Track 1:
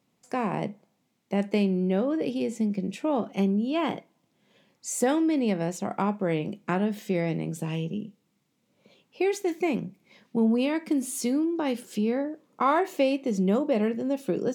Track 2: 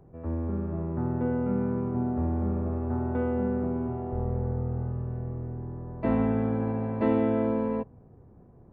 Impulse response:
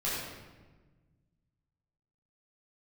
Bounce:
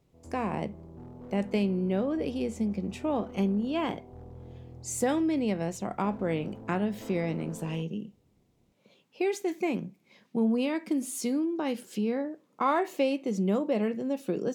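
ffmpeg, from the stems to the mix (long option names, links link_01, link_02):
-filter_complex "[0:a]volume=-3dB[link_01];[1:a]tremolo=f=210:d=0.621,lowpass=frequency=1100:width=0.5412,lowpass=frequency=1100:width=1.3066,asoftclip=type=hard:threshold=-26.5dB,volume=-13dB[link_02];[link_01][link_02]amix=inputs=2:normalize=0"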